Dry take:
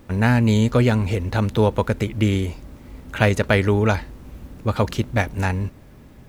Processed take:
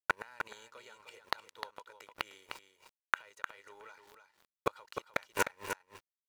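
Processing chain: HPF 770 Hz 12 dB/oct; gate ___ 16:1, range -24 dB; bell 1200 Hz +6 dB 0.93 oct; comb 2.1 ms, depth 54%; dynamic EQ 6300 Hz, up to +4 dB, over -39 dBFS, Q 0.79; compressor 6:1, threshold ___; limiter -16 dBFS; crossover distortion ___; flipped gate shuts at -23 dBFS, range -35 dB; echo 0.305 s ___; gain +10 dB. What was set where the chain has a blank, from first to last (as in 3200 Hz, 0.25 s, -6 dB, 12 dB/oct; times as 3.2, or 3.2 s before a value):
-47 dBFS, -22 dBFS, -46 dBFS, -7.5 dB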